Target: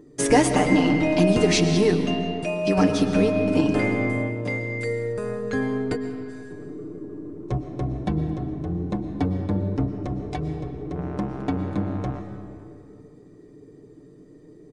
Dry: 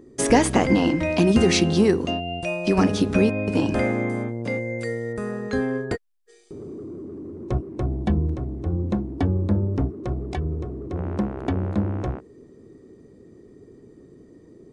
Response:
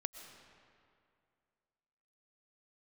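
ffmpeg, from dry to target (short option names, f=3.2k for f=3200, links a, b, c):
-filter_complex "[0:a]aecho=1:1:6.7:0.63[a];[1:a]atrim=start_sample=2205[b];[a][b]afir=irnorm=-1:irlink=0"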